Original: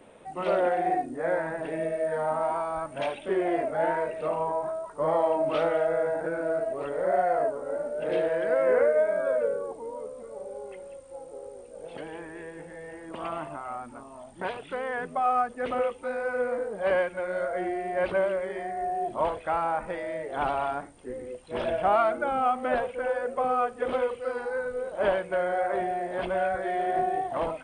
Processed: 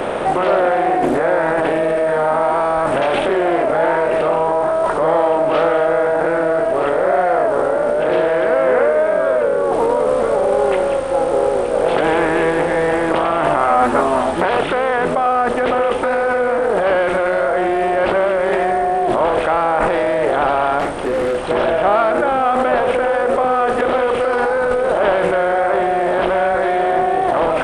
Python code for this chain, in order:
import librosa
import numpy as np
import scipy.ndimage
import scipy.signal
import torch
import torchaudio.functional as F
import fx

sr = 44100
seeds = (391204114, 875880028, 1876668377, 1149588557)

p1 = fx.bin_compress(x, sr, power=0.6)
p2 = fx.over_compress(p1, sr, threshold_db=-30.0, ratio=-0.5)
p3 = p1 + (p2 * librosa.db_to_amplitude(1.0))
p4 = fx.doubler(p3, sr, ms=12.0, db=-2.5, at=(13.66, 14.45))
p5 = fx.clip_hard(p4, sr, threshold_db=-20.5, at=(20.79, 21.46))
p6 = fx.doppler_dist(p5, sr, depth_ms=0.25)
y = p6 * librosa.db_to_amplitude(5.5)